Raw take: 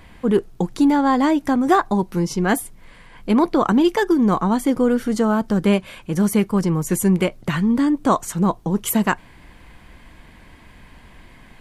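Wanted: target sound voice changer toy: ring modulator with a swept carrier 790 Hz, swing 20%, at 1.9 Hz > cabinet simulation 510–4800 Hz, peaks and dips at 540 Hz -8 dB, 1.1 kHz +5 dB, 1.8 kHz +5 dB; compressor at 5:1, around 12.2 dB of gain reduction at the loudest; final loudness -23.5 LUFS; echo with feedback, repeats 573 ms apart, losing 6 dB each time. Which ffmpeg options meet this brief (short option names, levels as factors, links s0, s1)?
-af "acompressor=threshold=0.0501:ratio=5,aecho=1:1:573|1146|1719|2292|2865|3438:0.501|0.251|0.125|0.0626|0.0313|0.0157,aeval=exprs='val(0)*sin(2*PI*790*n/s+790*0.2/1.9*sin(2*PI*1.9*n/s))':c=same,highpass=510,equalizer=f=540:t=q:w=4:g=-8,equalizer=f=1100:t=q:w=4:g=5,equalizer=f=1800:t=q:w=4:g=5,lowpass=f=4800:w=0.5412,lowpass=f=4800:w=1.3066,volume=2.11"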